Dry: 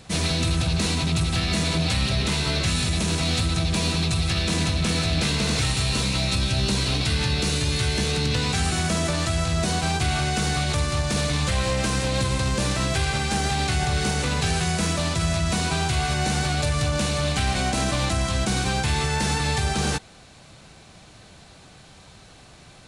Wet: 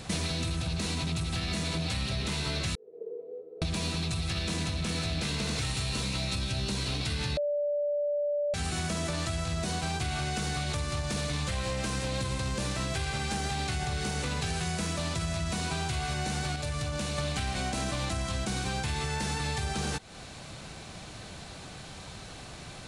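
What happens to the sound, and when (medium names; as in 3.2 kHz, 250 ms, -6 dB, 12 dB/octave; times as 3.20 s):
2.75–3.62 s: Butterworth band-pass 450 Hz, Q 7.3
7.37–8.54 s: bleep 584 Hz -14.5 dBFS
16.56–17.18 s: gain -5.5 dB
whole clip: compression, threshold -34 dBFS; trim +4 dB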